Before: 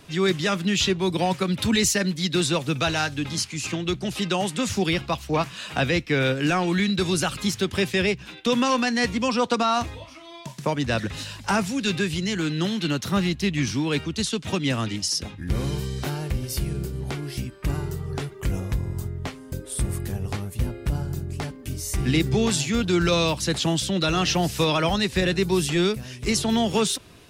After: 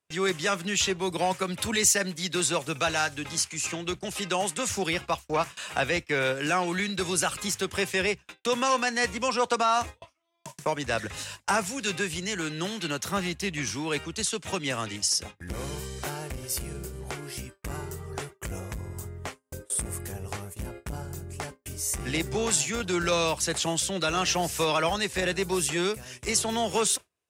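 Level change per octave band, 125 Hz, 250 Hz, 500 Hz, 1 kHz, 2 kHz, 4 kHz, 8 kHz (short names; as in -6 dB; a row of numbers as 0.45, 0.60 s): -10.0, -9.0, -3.5, -1.0, -1.5, -4.0, +2.0 dB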